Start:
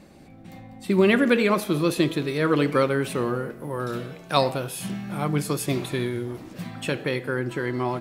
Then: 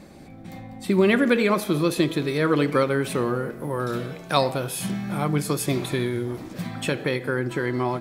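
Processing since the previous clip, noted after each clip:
notch filter 2,800 Hz, Q 14
in parallel at 0 dB: downward compressor, threshold −28 dBFS, peak gain reduction 13.5 dB
on the sum: every ending faded ahead of time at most 230 dB per second
level −2 dB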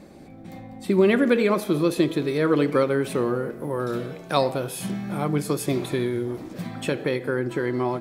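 parametric band 400 Hz +5 dB 2 octaves
level −3.5 dB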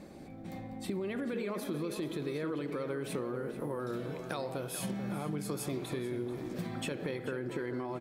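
brickwall limiter −16.5 dBFS, peak gain reduction 11 dB
downward compressor, threshold −30 dBFS, peak gain reduction 9.5 dB
slap from a distant wall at 75 metres, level −9 dB
level −3.5 dB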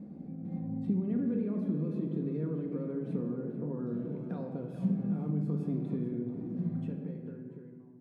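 fade-out on the ending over 1.88 s
resonant band-pass 180 Hz, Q 1.8
convolution reverb RT60 1.3 s, pre-delay 4 ms, DRR 3 dB
level +7 dB

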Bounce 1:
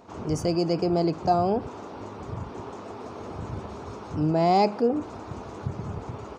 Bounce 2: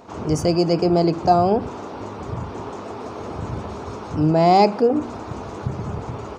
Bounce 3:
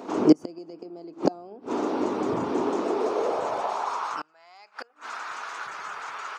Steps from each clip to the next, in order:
hum removal 47.54 Hz, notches 8; level +6.5 dB
gate with flip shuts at −11 dBFS, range −31 dB; high-pass filter sweep 290 Hz → 1,500 Hz, 0:02.77–0:04.37; level +2.5 dB

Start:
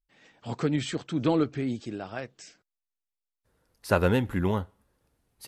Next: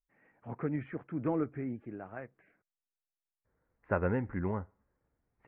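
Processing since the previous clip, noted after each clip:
Butterworth low-pass 2,200 Hz 48 dB per octave
level −7.5 dB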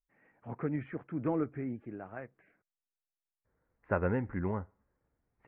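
no processing that can be heard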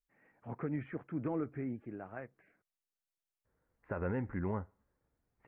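brickwall limiter −25.5 dBFS, peak gain reduction 10 dB
level −1.5 dB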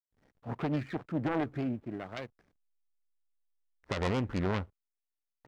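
phase distortion by the signal itself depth 0.46 ms
slack as between gear wheels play −59 dBFS
level +6 dB

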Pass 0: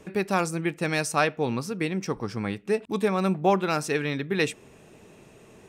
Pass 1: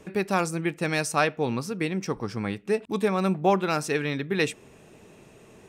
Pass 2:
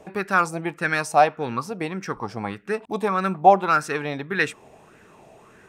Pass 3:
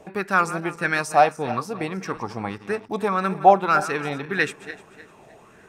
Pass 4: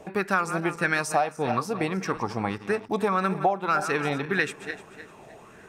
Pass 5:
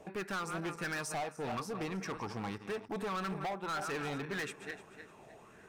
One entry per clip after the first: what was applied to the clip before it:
no processing that can be heard
auto-filter bell 1.7 Hz 690–1,600 Hz +16 dB; level −2.5 dB
feedback delay that plays each chunk backwards 152 ms, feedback 54%, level −13.5 dB
downward compressor 12 to 1, threshold −21 dBFS, peak gain reduction 14.5 dB; level +1.5 dB
gain into a clipping stage and back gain 26 dB; level −8 dB

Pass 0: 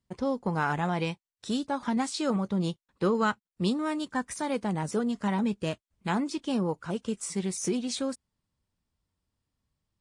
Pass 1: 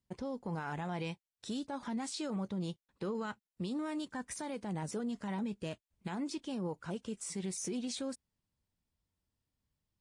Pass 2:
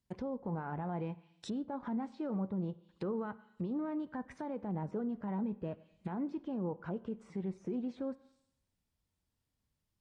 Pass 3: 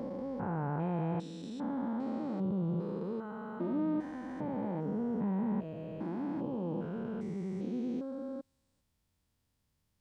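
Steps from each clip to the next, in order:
parametric band 1,200 Hz −3.5 dB 0.46 octaves; brickwall limiter −26 dBFS, peak gain reduction 10.5 dB; level −4.5 dB
four-comb reverb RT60 0.77 s, combs from 31 ms, DRR 17 dB; treble cut that deepens with the level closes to 1,100 Hz, closed at −37.5 dBFS; level +1 dB
spectrum averaged block by block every 400 ms; level +7 dB

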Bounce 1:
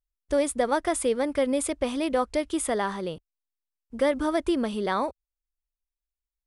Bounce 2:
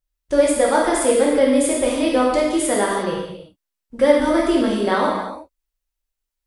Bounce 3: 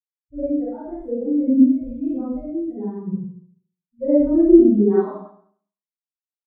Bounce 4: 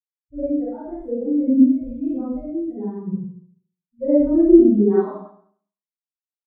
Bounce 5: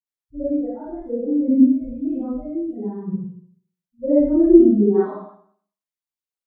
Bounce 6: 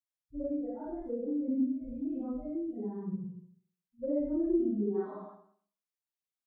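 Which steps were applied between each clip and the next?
reverb whose tail is shaped and stops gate 390 ms falling, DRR −4.5 dB; level +2.5 dB
spectral dynamics exaggerated over time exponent 3; four-comb reverb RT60 0.55 s, combs from 30 ms, DRR −7.5 dB; low-pass filter sweep 240 Hz → 490 Hz, 0:03.11–0:05.33; level −2.5 dB
no processing that can be heard
all-pass dispersion highs, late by 63 ms, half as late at 1,000 Hz
downward compressor 2 to 1, threshold −31 dBFS, peak gain reduction 14 dB; level −5.5 dB

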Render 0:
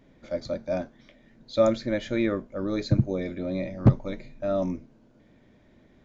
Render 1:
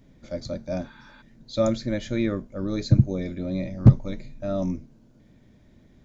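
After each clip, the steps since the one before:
healed spectral selection 0:00.87–0:01.19, 860–4,700 Hz before
bass and treble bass +9 dB, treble +9 dB
level −3 dB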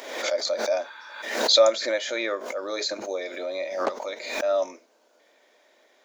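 inverse Chebyshev high-pass filter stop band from 150 Hz, stop band 60 dB
background raised ahead of every attack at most 60 dB per second
level +7.5 dB

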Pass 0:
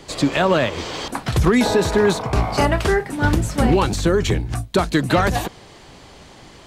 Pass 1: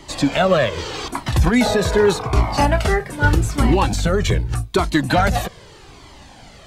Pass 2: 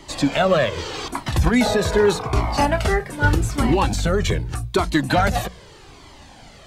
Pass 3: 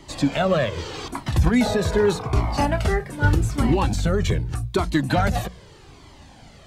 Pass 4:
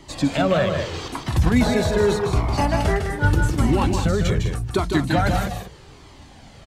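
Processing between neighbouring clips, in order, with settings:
flanger whose copies keep moving one way falling 0.82 Hz; level +5 dB
mains-hum notches 60/120/180 Hz; level −1.5 dB
parametric band 110 Hz +5.5 dB 3 octaves; level −4.5 dB
loudspeakers that aren't time-aligned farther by 53 metres −6 dB, 69 metres −10 dB

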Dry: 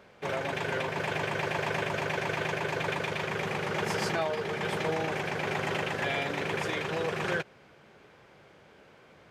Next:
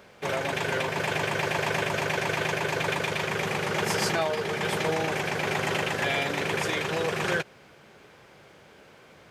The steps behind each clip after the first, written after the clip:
high-shelf EQ 5,100 Hz +8.5 dB
level +3 dB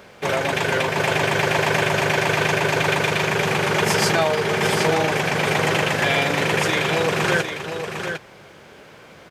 single-tap delay 753 ms −7.5 dB
level +7 dB

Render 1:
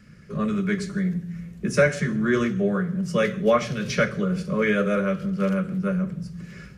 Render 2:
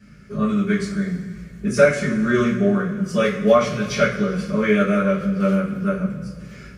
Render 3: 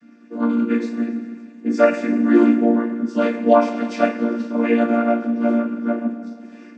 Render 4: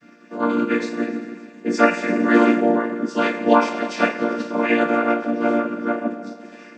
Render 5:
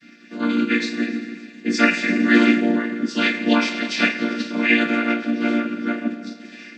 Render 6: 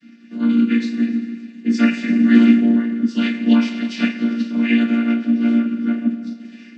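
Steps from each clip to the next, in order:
coupled-rooms reverb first 0.28 s, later 2.2 s, from −18 dB, DRR −10 dB; level −7 dB
channel vocoder with a chord as carrier major triad, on A#3; level +2.5 dB
ceiling on every frequency bin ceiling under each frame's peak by 15 dB; level −1 dB
graphic EQ with 10 bands 125 Hz −4 dB, 250 Hz +5 dB, 500 Hz −8 dB, 1,000 Hz −11 dB, 2,000 Hz +7 dB, 4,000 Hz +10 dB
hollow resonant body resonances 230/2,900 Hz, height 15 dB, ringing for 60 ms; level −7.5 dB

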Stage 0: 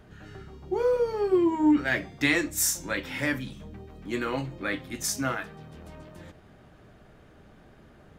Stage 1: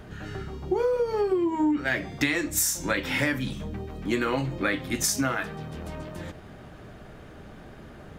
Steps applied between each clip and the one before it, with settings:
downward compressor 12 to 1, threshold −30 dBFS, peak gain reduction 13.5 dB
level +8.5 dB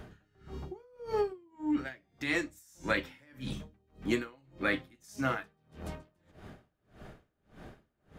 tremolo with a sine in dB 1.7 Hz, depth 34 dB
level −2.5 dB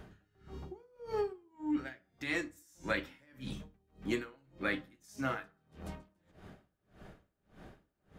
convolution reverb RT60 0.40 s, pre-delay 5 ms, DRR 14 dB
level −4 dB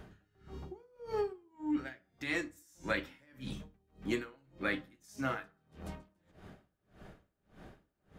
no processing that can be heard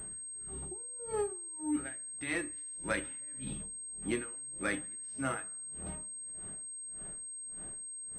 delay with a band-pass on its return 78 ms, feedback 45%, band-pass 1,300 Hz, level −23.5 dB
switching amplifier with a slow clock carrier 8,400 Hz

